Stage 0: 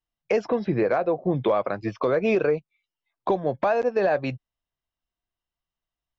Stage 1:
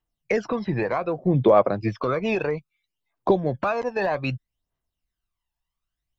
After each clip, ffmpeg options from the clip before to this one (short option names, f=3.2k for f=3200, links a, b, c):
-af "aphaser=in_gain=1:out_gain=1:delay=1.2:decay=0.63:speed=0.63:type=triangular"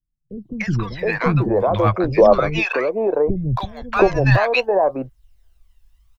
-filter_complex "[0:a]asubboost=boost=8.5:cutoff=75,dynaudnorm=f=430:g=3:m=14.5dB,acrossover=split=260|990[a][b][c];[c]adelay=300[d];[b]adelay=720[e];[a][e][d]amix=inputs=3:normalize=0,volume=1.5dB"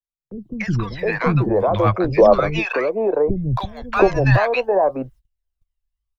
-filter_complex "[0:a]agate=range=-24dB:threshold=-43dB:ratio=16:detection=peak,acrossover=split=300|340|2100[a][b][c][d];[d]alimiter=limit=-22dB:level=0:latency=1:release=71[e];[a][b][c][e]amix=inputs=4:normalize=0"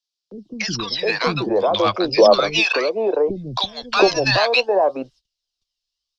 -filter_complex "[0:a]aexciter=amount=3.5:drive=9.9:freq=3k,lowpass=f=5.1k:t=q:w=3.3,acrossover=split=210 3500:gain=0.126 1 0.251[a][b][c];[a][b][c]amix=inputs=3:normalize=0"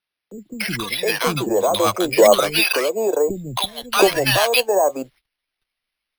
-af "acrusher=samples=6:mix=1:aa=0.000001"